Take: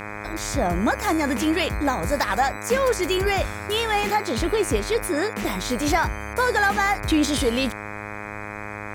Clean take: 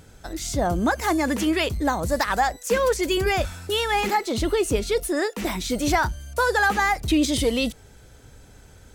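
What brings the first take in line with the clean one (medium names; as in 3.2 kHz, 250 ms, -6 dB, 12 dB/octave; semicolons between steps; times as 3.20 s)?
de-hum 104.1 Hz, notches 24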